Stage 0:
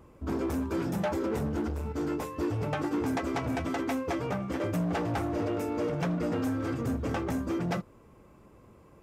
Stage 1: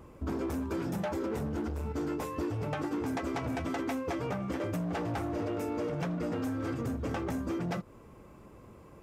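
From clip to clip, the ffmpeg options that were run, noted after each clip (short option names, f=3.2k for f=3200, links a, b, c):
-af "acompressor=threshold=-34dB:ratio=6,volume=3dB"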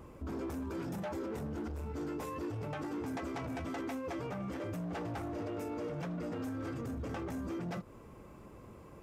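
-af "alimiter=level_in=9dB:limit=-24dB:level=0:latency=1:release=20,volume=-9dB"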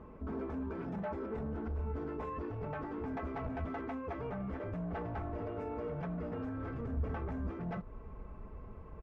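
-af "lowpass=1.8k,asubboost=boost=5:cutoff=90,aecho=1:1:4.6:0.45"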